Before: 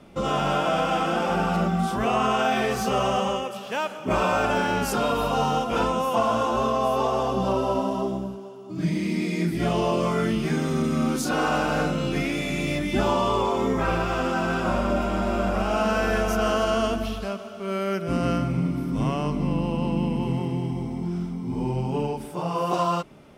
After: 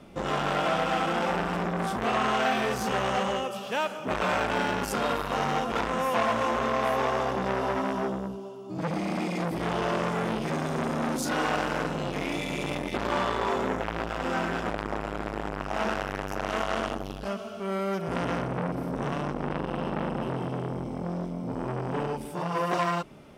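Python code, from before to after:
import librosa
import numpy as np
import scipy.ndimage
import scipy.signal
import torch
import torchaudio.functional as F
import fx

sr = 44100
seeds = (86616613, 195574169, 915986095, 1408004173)

y = fx.transformer_sat(x, sr, knee_hz=1500.0)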